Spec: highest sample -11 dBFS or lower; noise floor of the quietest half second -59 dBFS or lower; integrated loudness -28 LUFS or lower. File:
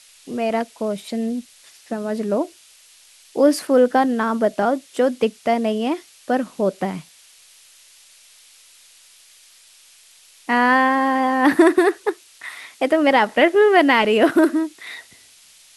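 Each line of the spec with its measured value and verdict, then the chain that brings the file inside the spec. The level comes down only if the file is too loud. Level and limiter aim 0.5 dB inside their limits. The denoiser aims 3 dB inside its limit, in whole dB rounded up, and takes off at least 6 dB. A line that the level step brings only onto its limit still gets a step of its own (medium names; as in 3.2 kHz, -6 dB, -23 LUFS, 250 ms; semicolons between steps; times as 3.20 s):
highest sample -2.5 dBFS: fail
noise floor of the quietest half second -50 dBFS: fail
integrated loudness -19.0 LUFS: fail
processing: trim -9.5 dB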